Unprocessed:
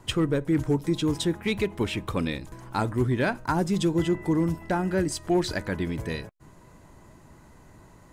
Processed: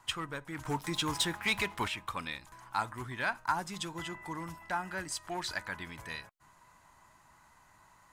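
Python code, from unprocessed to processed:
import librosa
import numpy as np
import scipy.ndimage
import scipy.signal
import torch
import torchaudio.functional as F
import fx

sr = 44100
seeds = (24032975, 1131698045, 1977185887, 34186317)

y = fx.low_shelf_res(x, sr, hz=650.0, db=-13.0, q=1.5)
y = fx.leveller(y, sr, passes=2, at=(0.65, 1.88))
y = y * 10.0 ** (-4.5 / 20.0)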